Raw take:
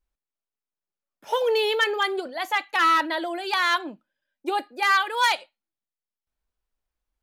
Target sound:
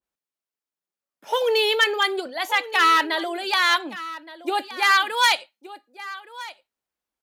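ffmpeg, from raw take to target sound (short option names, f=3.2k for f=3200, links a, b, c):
-filter_complex "[0:a]highpass=150,asplit=2[a][b];[b]aecho=0:1:1170:0.158[c];[a][c]amix=inputs=2:normalize=0,adynamicequalizer=threshold=0.02:dfrequency=1900:dqfactor=0.7:tfrequency=1900:tqfactor=0.7:attack=5:release=100:ratio=0.375:range=2.5:mode=boostabove:tftype=highshelf,volume=1dB"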